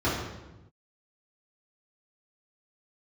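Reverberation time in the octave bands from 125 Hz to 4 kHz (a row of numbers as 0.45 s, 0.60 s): 1.5 s, 1.2 s, 1.1 s, 0.95 s, 0.85 s, 0.80 s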